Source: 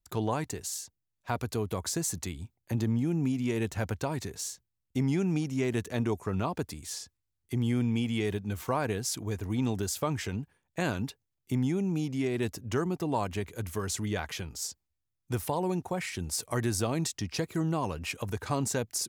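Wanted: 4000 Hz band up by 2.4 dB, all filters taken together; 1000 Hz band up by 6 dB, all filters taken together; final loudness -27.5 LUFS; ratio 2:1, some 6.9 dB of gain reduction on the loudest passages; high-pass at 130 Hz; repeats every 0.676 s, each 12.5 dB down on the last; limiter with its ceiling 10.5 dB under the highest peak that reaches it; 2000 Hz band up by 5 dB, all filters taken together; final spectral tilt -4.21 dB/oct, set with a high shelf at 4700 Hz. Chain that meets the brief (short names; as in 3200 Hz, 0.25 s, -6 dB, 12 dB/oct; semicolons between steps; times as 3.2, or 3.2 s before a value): HPF 130 Hz; bell 1000 Hz +6.5 dB; bell 2000 Hz +4 dB; bell 4000 Hz +3.5 dB; high shelf 4700 Hz -3 dB; compressor 2:1, threshold -33 dBFS; limiter -26 dBFS; feedback echo 0.676 s, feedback 24%, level -12.5 dB; gain +10 dB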